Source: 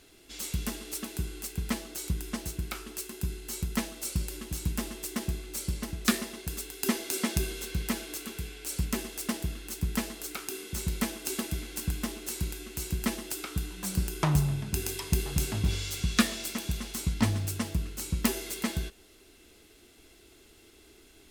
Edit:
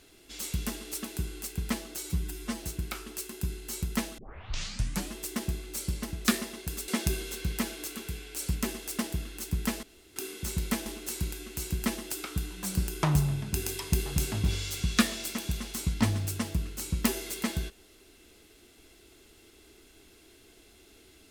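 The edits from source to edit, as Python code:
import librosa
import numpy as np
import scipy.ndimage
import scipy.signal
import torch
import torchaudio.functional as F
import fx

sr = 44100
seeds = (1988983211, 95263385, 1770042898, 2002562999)

y = fx.edit(x, sr, fx.stretch_span(start_s=2.03, length_s=0.4, factor=1.5),
    fx.tape_start(start_s=3.98, length_s=0.96),
    fx.cut(start_s=6.68, length_s=0.5),
    fx.room_tone_fill(start_s=10.13, length_s=0.33),
    fx.cut(start_s=11.16, length_s=0.9), tone=tone)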